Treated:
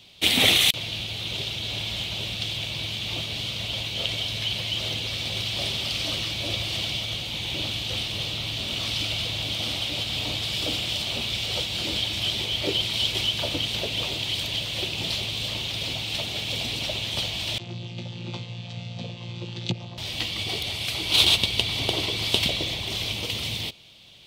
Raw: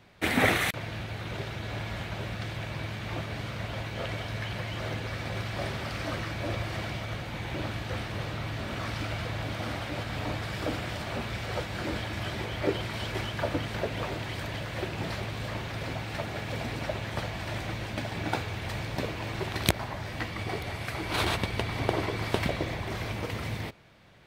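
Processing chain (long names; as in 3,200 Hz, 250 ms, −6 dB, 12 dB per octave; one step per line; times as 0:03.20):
0:17.58–0:19.98: channel vocoder with a chord as carrier bare fifth, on A#2
high shelf with overshoot 2,300 Hz +11.5 dB, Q 3
level −1 dB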